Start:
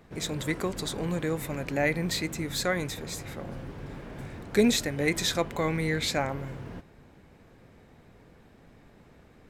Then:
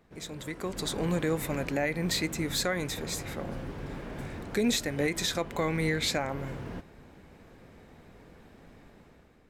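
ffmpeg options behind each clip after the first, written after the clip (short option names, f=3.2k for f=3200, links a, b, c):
-af "equalizer=f=120:t=o:w=0.56:g=-4,alimiter=limit=-20dB:level=0:latency=1:release=278,dynaudnorm=f=210:g=7:m=10dB,volume=-7.5dB"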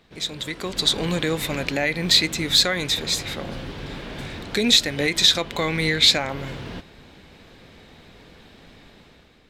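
-af "equalizer=f=3.7k:t=o:w=1.3:g=13.5,volume=4dB"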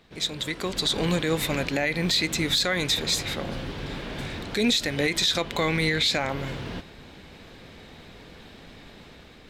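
-af "areverse,acompressor=mode=upward:threshold=-41dB:ratio=2.5,areverse,alimiter=limit=-13.5dB:level=0:latency=1:release=54"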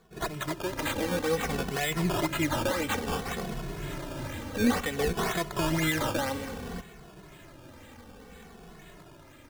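-filter_complex "[0:a]acrossover=split=2300[a][b];[b]aeval=exprs='(mod(11.2*val(0)+1,2)-1)/11.2':c=same[c];[a][c]amix=inputs=2:normalize=0,acrusher=samples=15:mix=1:aa=0.000001:lfo=1:lforange=15:lforate=2,asplit=2[d][e];[e]adelay=2.3,afreqshift=-0.58[f];[d][f]amix=inputs=2:normalize=1"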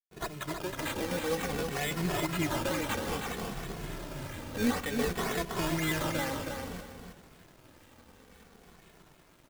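-af "acrusher=bits=3:mode=log:mix=0:aa=0.000001,aeval=exprs='sgn(val(0))*max(abs(val(0))-0.00224,0)':c=same,aecho=1:1:319|638|957:0.531|0.122|0.0281,volume=-4dB"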